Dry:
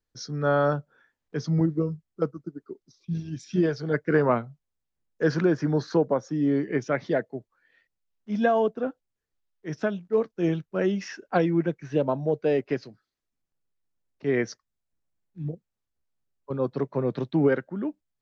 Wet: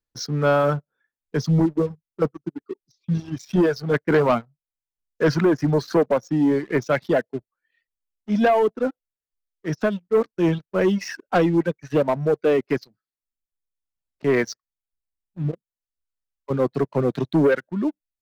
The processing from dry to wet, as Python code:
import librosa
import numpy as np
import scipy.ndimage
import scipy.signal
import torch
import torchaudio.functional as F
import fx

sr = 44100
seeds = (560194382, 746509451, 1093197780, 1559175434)

y = fx.dereverb_blind(x, sr, rt60_s=1.1)
y = fx.leveller(y, sr, passes=2)